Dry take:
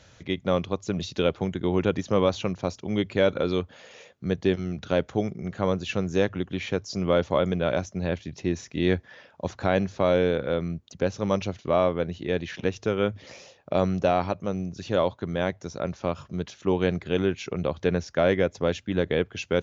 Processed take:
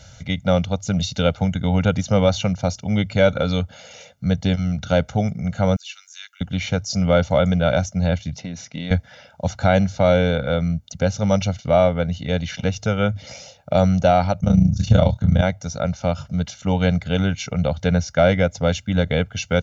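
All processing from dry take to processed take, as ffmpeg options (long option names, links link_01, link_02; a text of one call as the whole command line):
ffmpeg -i in.wav -filter_complex "[0:a]asettb=1/sr,asplit=3[link_01][link_02][link_03];[link_01]atrim=end=5.764[link_04];[link_02]atrim=start=5.76:end=6.41,asetpts=PTS-STARTPTS,afade=type=in:duration=0.004:curve=qsin,afade=type=out:start_time=0.646:duration=0.004:curve=qsin,highpass=frequency=1400:width=0.5412,highpass=frequency=1400:width=1.3066,acrossover=split=4700[link_05][link_06];[link_06]acompressor=threshold=-54dB:ratio=4:attack=1:release=60[link_07];[link_05][link_07]amix=inputs=2:normalize=0,aderivative[link_08];[link_03]atrim=start=6.406[link_09];[link_04][link_08]acrossfade=duration=0.004:curve1=hsin:curve2=qsin[link_10];[link_10][link_09]acrossfade=duration=0.004:curve1=qsin:curve2=hsin,asettb=1/sr,asplit=3[link_11][link_12][link_13];[link_11]atrim=end=8.384[link_14];[link_12]atrim=start=8.38:end=8.91,asetpts=PTS-STARTPTS,afade=type=in:duration=0.004:curve=qsin,afade=type=out:start_time=0.526:duration=0.004:curve=qsin,highpass=160,lowpass=4900,acompressor=threshold=-31dB:ratio=2.5:attack=3.2:release=140:knee=1:detection=peak[link_15];[link_13]atrim=start=8.906[link_16];[link_14][link_15]acrossfade=duration=0.004:curve1=hsin:curve2=qsin[link_17];[link_17][link_16]acrossfade=duration=0.004:curve1=qsin:curve2=hsin,asettb=1/sr,asplit=3[link_18][link_19][link_20];[link_18]atrim=end=14.404[link_21];[link_19]atrim=start=14.4:end=15.42,asetpts=PTS-STARTPTS,afade=type=in:duration=0.004:curve=qsin,afade=type=out:start_time=1.016:duration=0.004:curve=qsin,bass=frequency=250:gain=13,treble=frequency=4000:gain=4,tremolo=f=27:d=0.857,asplit=2[link_22][link_23];[link_23]adelay=26,volume=-6dB[link_24];[link_22][link_24]amix=inputs=2:normalize=0,atrim=end_sample=44982[link_25];[link_20]atrim=start=15.416[link_26];[link_21][link_25]acrossfade=duration=0.004:curve1=hsin:curve2=qsin[link_27];[link_27][link_26]acrossfade=duration=0.004:curve1=qsin:curve2=hsin,bass=frequency=250:gain=5,treble=frequency=4000:gain=7,aecho=1:1:1.4:0.99,volume=2dB" out.wav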